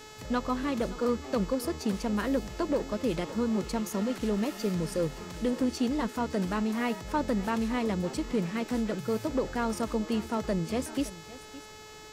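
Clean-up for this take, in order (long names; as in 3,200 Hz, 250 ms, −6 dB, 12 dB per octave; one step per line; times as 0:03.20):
clipped peaks rebuilt −20 dBFS
hum removal 429.8 Hz, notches 18
downward expander −35 dBFS, range −21 dB
echo removal 565 ms −17 dB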